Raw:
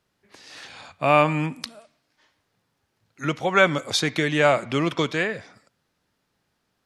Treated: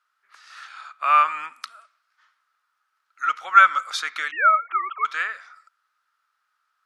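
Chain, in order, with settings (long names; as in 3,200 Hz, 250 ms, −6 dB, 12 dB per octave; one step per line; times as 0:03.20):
0:04.31–0:05.05: three sine waves on the formant tracks
high-pass with resonance 1,300 Hz, resonance Q 9.2
level −6 dB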